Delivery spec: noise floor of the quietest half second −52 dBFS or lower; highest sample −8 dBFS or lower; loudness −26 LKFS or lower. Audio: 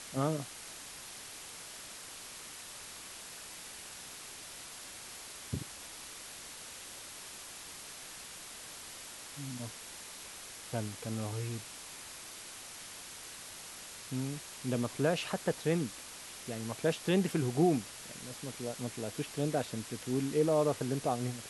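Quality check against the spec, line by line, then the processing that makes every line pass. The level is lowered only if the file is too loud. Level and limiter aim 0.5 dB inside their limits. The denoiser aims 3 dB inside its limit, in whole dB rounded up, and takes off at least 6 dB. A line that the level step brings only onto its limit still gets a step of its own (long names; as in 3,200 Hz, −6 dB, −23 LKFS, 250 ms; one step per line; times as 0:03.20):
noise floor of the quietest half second −48 dBFS: out of spec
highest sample −16.5 dBFS: in spec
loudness −37.5 LKFS: in spec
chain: broadband denoise 7 dB, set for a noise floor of −48 dBFS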